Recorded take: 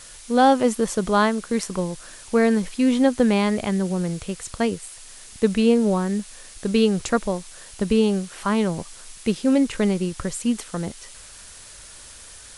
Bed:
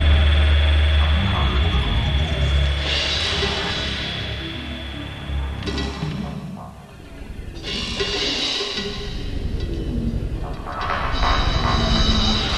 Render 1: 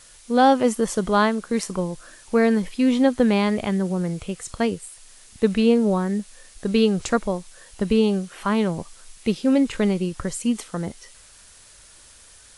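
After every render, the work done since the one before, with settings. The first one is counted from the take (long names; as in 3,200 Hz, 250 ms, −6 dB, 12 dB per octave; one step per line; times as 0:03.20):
noise reduction from a noise print 6 dB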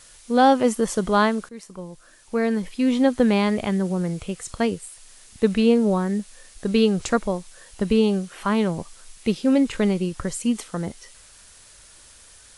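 0:01.49–0:03.17: fade in linear, from −18 dB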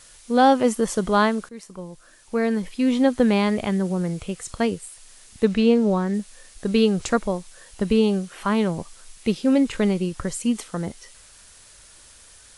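0:05.45–0:06.14: low-pass filter 7,400 Hz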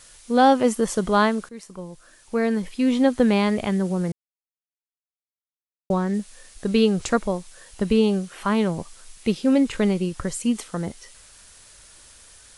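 0:04.12–0:05.90: silence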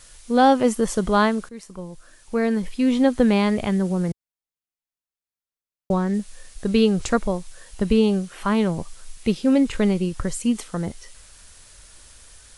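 low-shelf EQ 84 Hz +9 dB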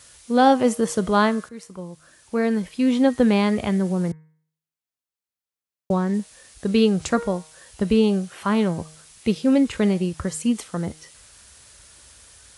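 high-pass filter 55 Hz 24 dB per octave
hum removal 156.5 Hz, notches 16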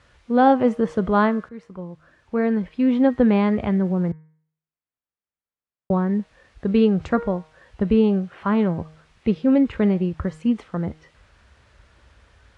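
low-pass filter 2,100 Hz 12 dB per octave
low-shelf EQ 100 Hz +6 dB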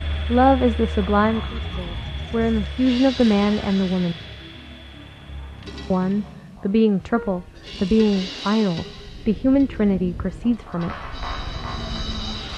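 mix in bed −10 dB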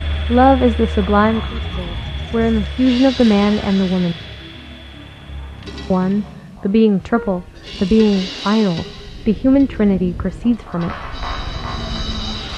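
level +4.5 dB
brickwall limiter −1 dBFS, peak gain reduction 1 dB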